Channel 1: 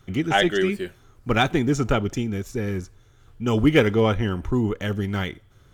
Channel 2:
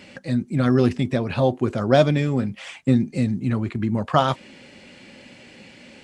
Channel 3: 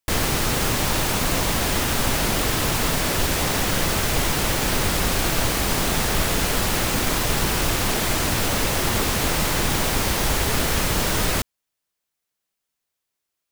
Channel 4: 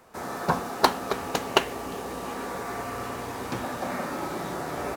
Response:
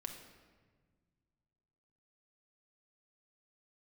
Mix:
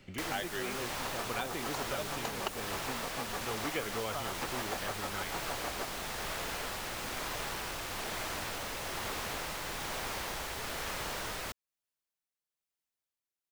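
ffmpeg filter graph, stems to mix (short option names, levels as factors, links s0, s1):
-filter_complex "[0:a]volume=0.355[s0];[1:a]volume=0.168[s1];[2:a]tremolo=f=1.1:d=0.33,adelay=100,volume=0.299[s2];[3:a]aeval=exprs='val(0)*pow(10,-21*(0.5-0.5*cos(2*PI*6.5*n/s))/20)':c=same,adelay=900,volume=1.06[s3];[s0][s1][s2][s3]amix=inputs=4:normalize=0,acrossover=split=460|2300|6200[s4][s5][s6][s7];[s4]acompressor=threshold=0.00501:ratio=4[s8];[s5]acompressor=threshold=0.0158:ratio=4[s9];[s6]acompressor=threshold=0.00631:ratio=4[s10];[s7]acompressor=threshold=0.00501:ratio=4[s11];[s8][s9][s10][s11]amix=inputs=4:normalize=0"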